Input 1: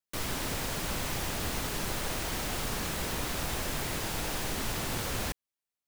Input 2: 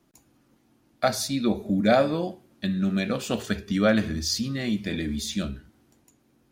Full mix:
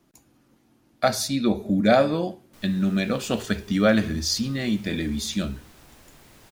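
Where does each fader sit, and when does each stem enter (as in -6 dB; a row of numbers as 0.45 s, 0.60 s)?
-18.5 dB, +2.0 dB; 2.40 s, 0.00 s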